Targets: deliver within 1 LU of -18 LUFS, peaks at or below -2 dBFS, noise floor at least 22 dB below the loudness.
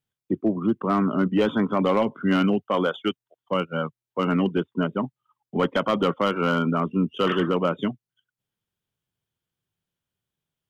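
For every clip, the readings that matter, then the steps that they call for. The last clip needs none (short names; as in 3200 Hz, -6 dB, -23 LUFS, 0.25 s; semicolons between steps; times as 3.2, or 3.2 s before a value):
clipped 0.3%; flat tops at -13.5 dBFS; loudness -24.5 LUFS; peak -13.5 dBFS; loudness target -18.0 LUFS
-> clip repair -13.5 dBFS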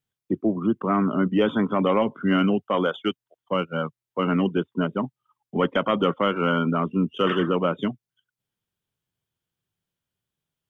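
clipped 0.0%; loudness -24.0 LUFS; peak -9.0 dBFS; loudness target -18.0 LUFS
-> gain +6 dB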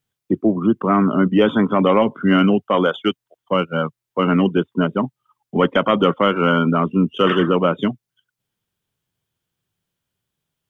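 loudness -18.0 LUFS; peak -3.0 dBFS; noise floor -84 dBFS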